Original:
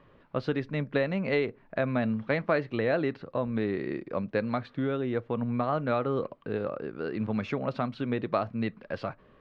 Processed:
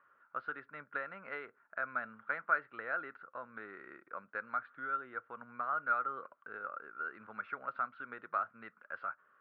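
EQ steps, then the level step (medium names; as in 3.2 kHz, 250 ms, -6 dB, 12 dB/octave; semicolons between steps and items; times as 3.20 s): band-pass filter 1.4 kHz, Q 11; distance through air 210 m; +9.5 dB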